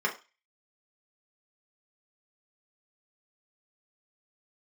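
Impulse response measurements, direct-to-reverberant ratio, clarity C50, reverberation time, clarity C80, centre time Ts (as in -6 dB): -2.0 dB, 13.0 dB, 0.30 s, 18.5 dB, 14 ms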